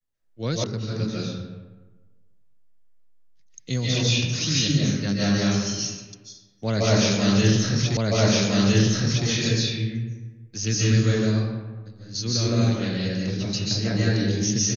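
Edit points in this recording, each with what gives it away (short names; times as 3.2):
0.64 sound cut off
7.97 repeat of the last 1.31 s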